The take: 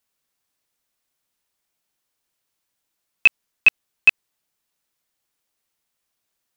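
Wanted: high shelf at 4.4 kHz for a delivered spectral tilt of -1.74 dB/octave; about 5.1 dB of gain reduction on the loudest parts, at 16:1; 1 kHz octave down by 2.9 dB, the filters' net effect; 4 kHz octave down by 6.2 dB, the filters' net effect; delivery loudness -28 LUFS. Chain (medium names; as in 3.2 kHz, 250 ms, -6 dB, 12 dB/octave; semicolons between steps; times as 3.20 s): peaking EQ 1 kHz -3 dB; peaking EQ 4 kHz -7.5 dB; treble shelf 4.4 kHz -5 dB; compression 16:1, threshold -17 dBFS; trim -2 dB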